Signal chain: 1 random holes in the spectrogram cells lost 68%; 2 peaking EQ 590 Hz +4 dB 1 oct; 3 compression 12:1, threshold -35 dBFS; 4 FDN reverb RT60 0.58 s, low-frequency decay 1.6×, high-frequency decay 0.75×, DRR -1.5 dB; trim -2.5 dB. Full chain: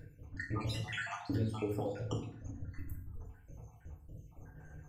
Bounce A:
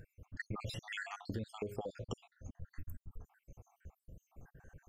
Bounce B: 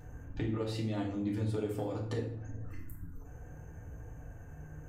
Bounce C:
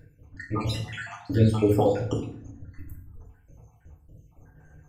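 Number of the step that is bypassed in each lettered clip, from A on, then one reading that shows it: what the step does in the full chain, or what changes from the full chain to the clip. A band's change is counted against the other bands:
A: 4, crest factor change +2.5 dB; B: 1, 2 kHz band -8.0 dB; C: 3, mean gain reduction 5.5 dB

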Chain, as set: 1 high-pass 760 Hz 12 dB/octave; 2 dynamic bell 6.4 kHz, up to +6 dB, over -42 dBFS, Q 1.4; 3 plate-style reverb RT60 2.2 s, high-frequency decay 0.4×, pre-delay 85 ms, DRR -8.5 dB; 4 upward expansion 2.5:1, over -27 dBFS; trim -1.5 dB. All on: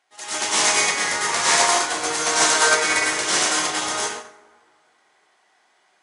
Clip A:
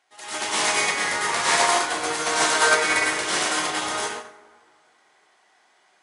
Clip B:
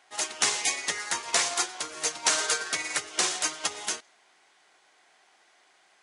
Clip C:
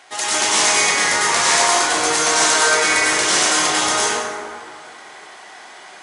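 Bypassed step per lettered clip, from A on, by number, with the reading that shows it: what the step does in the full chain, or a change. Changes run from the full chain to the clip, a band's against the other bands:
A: 2, 8 kHz band -5.0 dB; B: 3, crest factor change +5.0 dB; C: 4, momentary loudness spread change -1 LU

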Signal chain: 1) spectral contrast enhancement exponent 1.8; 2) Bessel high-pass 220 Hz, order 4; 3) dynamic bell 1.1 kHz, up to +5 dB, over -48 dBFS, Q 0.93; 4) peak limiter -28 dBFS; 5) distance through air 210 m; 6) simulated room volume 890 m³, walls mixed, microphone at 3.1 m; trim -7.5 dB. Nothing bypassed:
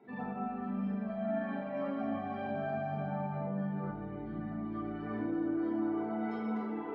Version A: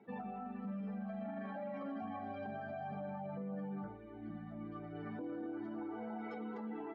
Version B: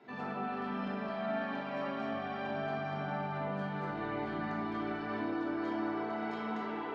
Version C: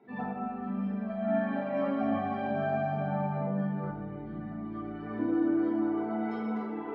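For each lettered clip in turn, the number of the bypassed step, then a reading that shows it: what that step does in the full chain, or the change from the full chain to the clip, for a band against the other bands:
6, echo-to-direct 5.5 dB to none; 1, 2 kHz band +7.5 dB; 4, mean gain reduction 3.0 dB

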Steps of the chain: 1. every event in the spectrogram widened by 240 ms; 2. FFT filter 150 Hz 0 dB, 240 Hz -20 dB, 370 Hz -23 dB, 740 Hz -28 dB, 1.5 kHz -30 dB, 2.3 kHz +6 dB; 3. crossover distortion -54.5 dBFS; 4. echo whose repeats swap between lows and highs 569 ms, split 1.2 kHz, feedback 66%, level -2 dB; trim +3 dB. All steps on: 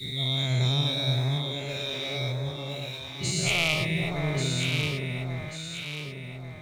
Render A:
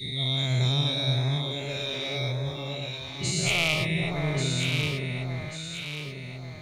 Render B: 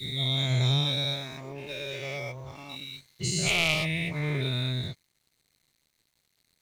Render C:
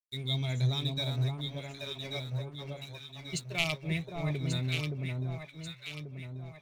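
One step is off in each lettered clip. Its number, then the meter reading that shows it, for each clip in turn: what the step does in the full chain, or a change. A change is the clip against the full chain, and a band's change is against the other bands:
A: 3, distortion -25 dB; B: 4, echo-to-direct -3.0 dB to none; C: 1, 8 kHz band -4.0 dB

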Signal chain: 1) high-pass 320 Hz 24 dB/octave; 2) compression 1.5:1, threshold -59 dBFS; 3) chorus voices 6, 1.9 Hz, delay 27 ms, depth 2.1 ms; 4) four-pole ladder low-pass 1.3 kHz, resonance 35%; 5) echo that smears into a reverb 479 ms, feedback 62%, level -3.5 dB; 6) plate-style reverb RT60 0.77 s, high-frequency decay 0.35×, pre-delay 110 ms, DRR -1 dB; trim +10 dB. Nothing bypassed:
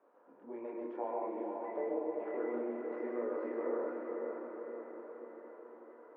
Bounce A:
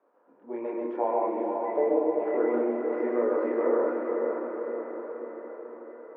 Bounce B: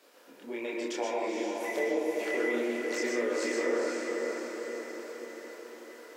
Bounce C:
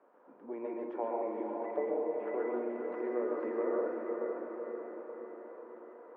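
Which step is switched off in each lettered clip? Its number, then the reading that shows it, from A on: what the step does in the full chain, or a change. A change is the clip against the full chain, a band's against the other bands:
2, mean gain reduction 9.0 dB; 4, 2 kHz band +12.5 dB; 3, loudness change +3.0 LU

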